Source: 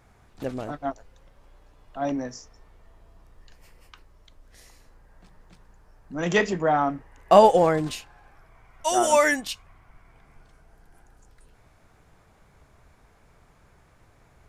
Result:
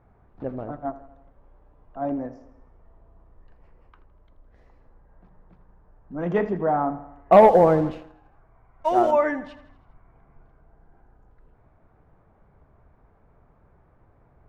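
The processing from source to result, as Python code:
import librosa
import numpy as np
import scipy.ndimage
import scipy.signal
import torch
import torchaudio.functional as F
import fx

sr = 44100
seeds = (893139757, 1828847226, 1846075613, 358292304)

p1 = scipy.signal.sosfilt(scipy.signal.butter(2, 1100.0, 'lowpass', fs=sr, output='sos'), x)
p2 = p1 + fx.echo_feedback(p1, sr, ms=81, feedback_pct=56, wet_db=-15.5, dry=0)
y = fx.leveller(p2, sr, passes=1, at=(7.32, 9.11))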